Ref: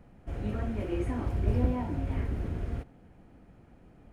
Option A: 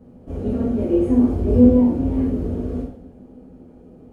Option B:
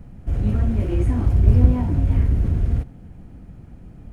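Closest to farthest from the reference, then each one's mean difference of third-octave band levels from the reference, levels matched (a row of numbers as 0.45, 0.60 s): B, A; 4.5, 7.5 dB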